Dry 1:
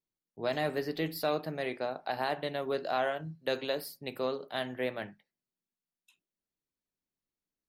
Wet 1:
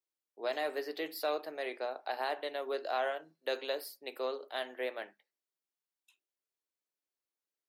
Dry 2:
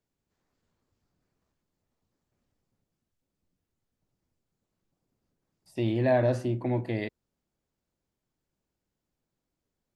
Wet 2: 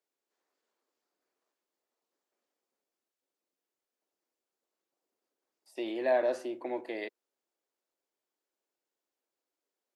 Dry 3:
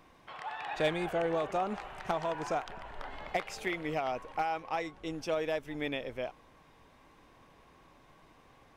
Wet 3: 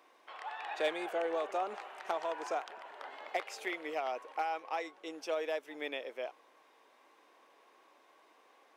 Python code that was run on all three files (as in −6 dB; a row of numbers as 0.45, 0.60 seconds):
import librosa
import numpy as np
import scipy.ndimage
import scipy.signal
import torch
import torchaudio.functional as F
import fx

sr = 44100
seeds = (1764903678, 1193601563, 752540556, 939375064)

y = scipy.signal.sosfilt(scipy.signal.butter(4, 350.0, 'highpass', fs=sr, output='sos'), x)
y = y * librosa.db_to_amplitude(-2.5)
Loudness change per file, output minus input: −3.0, −5.0, −3.0 LU